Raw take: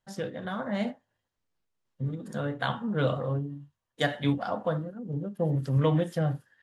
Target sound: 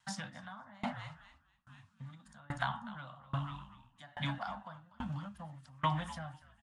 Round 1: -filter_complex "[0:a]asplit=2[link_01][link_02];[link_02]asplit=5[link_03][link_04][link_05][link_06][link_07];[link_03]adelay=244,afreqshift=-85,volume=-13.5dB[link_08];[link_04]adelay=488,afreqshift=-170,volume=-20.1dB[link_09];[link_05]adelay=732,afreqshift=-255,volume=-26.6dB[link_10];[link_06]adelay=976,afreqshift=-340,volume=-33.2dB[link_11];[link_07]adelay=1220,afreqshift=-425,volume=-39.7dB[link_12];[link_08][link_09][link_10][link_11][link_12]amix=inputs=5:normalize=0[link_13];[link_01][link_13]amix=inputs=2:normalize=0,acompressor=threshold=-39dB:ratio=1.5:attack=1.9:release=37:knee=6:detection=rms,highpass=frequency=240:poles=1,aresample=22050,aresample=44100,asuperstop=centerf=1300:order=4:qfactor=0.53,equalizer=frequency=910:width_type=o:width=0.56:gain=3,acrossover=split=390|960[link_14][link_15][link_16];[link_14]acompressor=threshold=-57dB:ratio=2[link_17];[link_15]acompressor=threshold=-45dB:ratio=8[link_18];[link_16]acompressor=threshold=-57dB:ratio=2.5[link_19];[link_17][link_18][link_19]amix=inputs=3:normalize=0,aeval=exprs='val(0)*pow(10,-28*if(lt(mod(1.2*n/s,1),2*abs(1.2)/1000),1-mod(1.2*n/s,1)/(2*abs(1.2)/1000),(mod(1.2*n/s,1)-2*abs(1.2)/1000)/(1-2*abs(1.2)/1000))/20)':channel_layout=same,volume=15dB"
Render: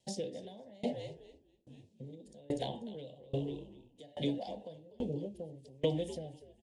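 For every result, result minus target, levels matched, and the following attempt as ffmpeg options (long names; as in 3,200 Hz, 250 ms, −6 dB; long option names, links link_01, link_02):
500 Hz band +11.5 dB; downward compressor: peak gain reduction +4 dB
-filter_complex "[0:a]asplit=2[link_01][link_02];[link_02]asplit=5[link_03][link_04][link_05][link_06][link_07];[link_03]adelay=244,afreqshift=-85,volume=-13.5dB[link_08];[link_04]adelay=488,afreqshift=-170,volume=-20.1dB[link_09];[link_05]adelay=732,afreqshift=-255,volume=-26.6dB[link_10];[link_06]adelay=976,afreqshift=-340,volume=-33.2dB[link_11];[link_07]adelay=1220,afreqshift=-425,volume=-39.7dB[link_12];[link_08][link_09][link_10][link_11][link_12]amix=inputs=5:normalize=0[link_13];[link_01][link_13]amix=inputs=2:normalize=0,acompressor=threshold=-39dB:ratio=1.5:attack=1.9:release=37:knee=6:detection=rms,highpass=frequency=240:poles=1,aresample=22050,aresample=44100,asuperstop=centerf=420:order=4:qfactor=0.53,equalizer=frequency=910:width_type=o:width=0.56:gain=3,acrossover=split=390|960[link_14][link_15][link_16];[link_14]acompressor=threshold=-57dB:ratio=2[link_17];[link_15]acompressor=threshold=-45dB:ratio=8[link_18];[link_16]acompressor=threshold=-57dB:ratio=2.5[link_19];[link_17][link_18][link_19]amix=inputs=3:normalize=0,aeval=exprs='val(0)*pow(10,-28*if(lt(mod(1.2*n/s,1),2*abs(1.2)/1000),1-mod(1.2*n/s,1)/(2*abs(1.2)/1000),(mod(1.2*n/s,1)-2*abs(1.2)/1000)/(1-2*abs(1.2)/1000))/20)':channel_layout=same,volume=15dB"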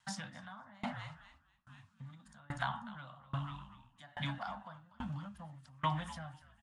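downward compressor: peak gain reduction +4 dB
-filter_complex "[0:a]asplit=2[link_01][link_02];[link_02]asplit=5[link_03][link_04][link_05][link_06][link_07];[link_03]adelay=244,afreqshift=-85,volume=-13.5dB[link_08];[link_04]adelay=488,afreqshift=-170,volume=-20.1dB[link_09];[link_05]adelay=732,afreqshift=-255,volume=-26.6dB[link_10];[link_06]adelay=976,afreqshift=-340,volume=-33.2dB[link_11];[link_07]adelay=1220,afreqshift=-425,volume=-39.7dB[link_12];[link_08][link_09][link_10][link_11][link_12]amix=inputs=5:normalize=0[link_13];[link_01][link_13]amix=inputs=2:normalize=0,acompressor=threshold=-27.5dB:ratio=1.5:attack=1.9:release=37:knee=6:detection=rms,highpass=frequency=240:poles=1,aresample=22050,aresample=44100,asuperstop=centerf=420:order=4:qfactor=0.53,equalizer=frequency=910:width_type=o:width=0.56:gain=3,acrossover=split=390|960[link_14][link_15][link_16];[link_14]acompressor=threshold=-57dB:ratio=2[link_17];[link_15]acompressor=threshold=-45dB:ratio=8[link_18];[link_16]acompressor=threshold=-57dB:ratio=2.5[link_19];[link_17][link_18][link_19]amix=inputs=3:normalize=0,aeval=exprs='val(0)*pow(10,-28*if(lt(mod(1.2*n/s,1),2*abs(1.2)/1000),1-mod(1.2*n/s,1)/(2*abs(1.2)/1000),(mod(1.2*n/s,1)-2*abs(1.2)/1000)/(1-2*abs(1.2)/1000))/20)':channel_layout=same,volume=15dB"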